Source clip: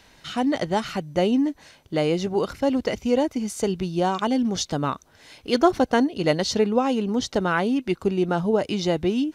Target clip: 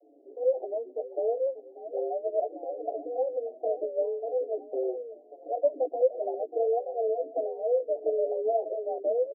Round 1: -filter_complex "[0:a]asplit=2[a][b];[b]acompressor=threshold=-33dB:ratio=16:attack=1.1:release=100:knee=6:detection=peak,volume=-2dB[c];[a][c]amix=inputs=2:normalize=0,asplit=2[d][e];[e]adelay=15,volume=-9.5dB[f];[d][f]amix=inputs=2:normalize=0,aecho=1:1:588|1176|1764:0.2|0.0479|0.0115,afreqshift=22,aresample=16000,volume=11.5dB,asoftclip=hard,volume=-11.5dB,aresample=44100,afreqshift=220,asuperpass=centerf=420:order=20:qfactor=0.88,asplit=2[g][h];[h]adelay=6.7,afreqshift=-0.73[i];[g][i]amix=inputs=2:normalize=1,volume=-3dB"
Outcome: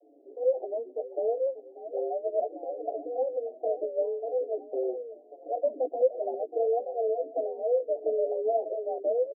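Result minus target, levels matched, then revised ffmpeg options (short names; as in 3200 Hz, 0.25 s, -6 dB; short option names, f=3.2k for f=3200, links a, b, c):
overloaded stage: distortion +29 dB
-filter_complex "[0:a]asplit=2[a][b];[b]acompressor=threshold=-33dB:ratio=16:attack=1.1:release=100:knee=6:detection=peak,volume=-2dB[c];[a][c]amix=inputs=2:normalize=0,asplit=2[d][e];[e]adelay=15,volume=-9.5dB[f];[d][f]amix=inputs=2:normalize=0,aecho=1:1:588|1176|1764:0.2|0.0479|0.0115,afreqshift=22,aresample=16000,volume=3dB,asoftclip=hard,volume=-3dB,aresample=44100,afreqshift=220,asuperpass=centerf=420:order=20:qfactor=0.88,asplit=2[g][h];[h]adelay=6.7,afreqshift=-0.73[i];[g][i]amix=inputs=2:normalize=1,volume=-3dB"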